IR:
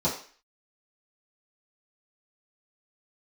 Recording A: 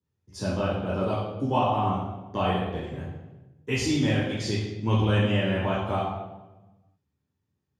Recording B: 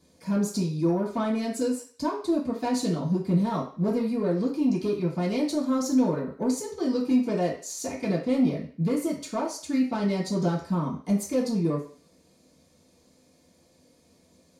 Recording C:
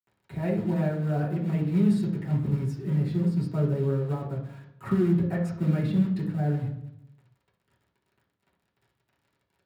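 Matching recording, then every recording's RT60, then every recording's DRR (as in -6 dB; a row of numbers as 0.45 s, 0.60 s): B; 1.1 s, 0.45 s, 0.80 s; -6.0 dB, -10.0 dB, -7.0 dB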